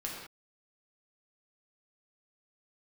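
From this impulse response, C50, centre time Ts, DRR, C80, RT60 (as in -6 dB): 1.0 dB, 58 ms, -3.5 dB, 3.5 dB, no single decay rate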